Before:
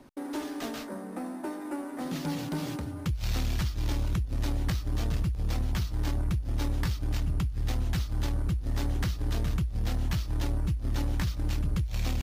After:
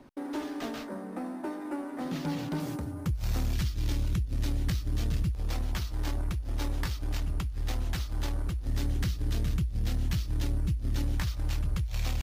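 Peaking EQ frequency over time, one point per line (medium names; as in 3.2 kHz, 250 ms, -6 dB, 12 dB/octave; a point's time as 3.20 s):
peaking EQ -7 dB 1.7 oct
11 kHz
from 2.60 s 3.3 kHz
from 3.53 s 860 Hz
from 5.31 s 140 Hz
from 8.67 s 880 Hz
from 11.18 s 250 Hz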